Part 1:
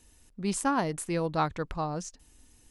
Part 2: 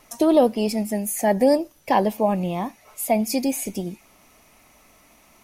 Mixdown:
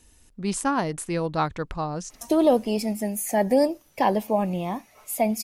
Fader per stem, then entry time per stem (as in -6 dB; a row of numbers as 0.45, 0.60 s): +3.0, -2.5 dB; 0.00, 2.10 s